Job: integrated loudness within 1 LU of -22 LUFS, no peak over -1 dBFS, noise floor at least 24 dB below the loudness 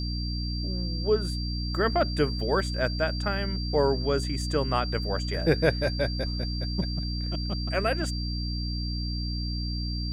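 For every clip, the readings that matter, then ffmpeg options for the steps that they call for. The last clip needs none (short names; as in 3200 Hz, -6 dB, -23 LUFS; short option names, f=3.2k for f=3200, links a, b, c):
hum 60 Hz; harmonics up to 300 Hz; hum level -28 dBFS; steady tone 4700 Hz; tone level -36 dBFS; loudness -28.0 LUFS; peak -8.5 dBFS; loudness target -22.0 LUFS
-> -af "bandreject=f=60:t=h:w=4,bandreject=f=120:t=h:w=4,bandreject=f=180:t=h:w=4,bandreject=f=240:t=h:w=4,bandreject=f=300:t=h:w=4"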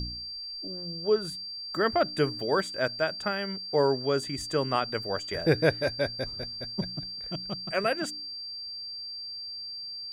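hum none; steady tone 4700 Hz; tone level -36 dBFS
-> -af "bandreject=f=4.7k:w=30"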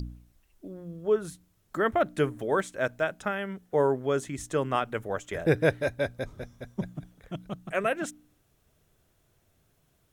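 steady tone none; loudness -29.5 LUFS; peak -9.5 dBFS; loudness target -22.0 LUFS
-> -af "volume=7.5dB"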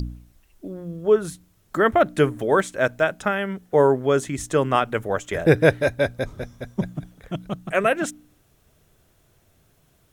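loudness -22.0 LUFS; peak -2.0 dBFS; noise floor -62 dBFS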